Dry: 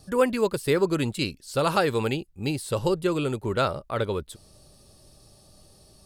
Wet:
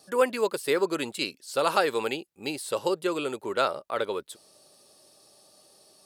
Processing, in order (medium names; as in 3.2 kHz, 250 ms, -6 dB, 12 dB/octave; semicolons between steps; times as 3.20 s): high-pass 380 Hz 12 dB/octave